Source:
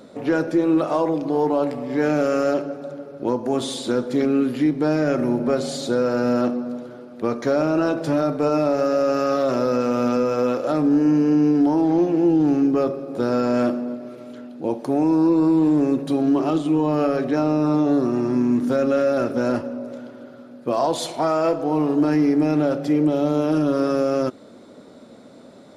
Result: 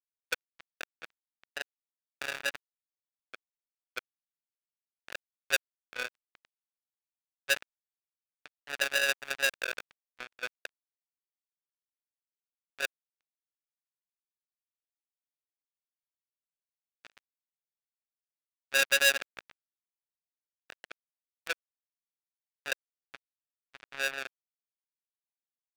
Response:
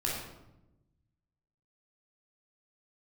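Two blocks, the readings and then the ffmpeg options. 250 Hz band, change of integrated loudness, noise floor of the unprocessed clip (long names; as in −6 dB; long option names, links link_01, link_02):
below −40 dB, −11.0 dB, −44 dBFS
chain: -filter_complex "[0:a]asplit=3[link_01][link_02][link_03];[link_01]bandpass=frequency=530:width_type=q:width=8,volume=0dB[link_04];[link_02]bandpass=frequency=1840:width_type=q:width=8,volume=-6dB[link_05];[link_03]bandpass=frequency=2480:width_type=q:width=8,volume=-9dB[link_06];[link_04][link_05][link_06]amix=inputs=3:normalize=0,aeval=exprs='0.168*(cos(1*acos(clip(val(0)/0.168,-1,1)))-cos(1*PI/2))+0.0299*(cos(2*acos(clip(val(0)/0.168,-1,1)))-cos(2*PI/2))+0.0668*(cos(7*acos(clip(val(0)/0.168,-1,1)))-cos(7*PI/2))':channel_layout=same,asoftclip=type=tanh:threshold=-18dB,adynamicsmooth=sensitivity=4:basefreq=4100,highpass=110,aemphasis=mode=production:type=75fm,acrusher=bits=2:mix=0:aa=0.5,equalizer=frequency=2000:width_type=o:width=2.3:gain=11.5"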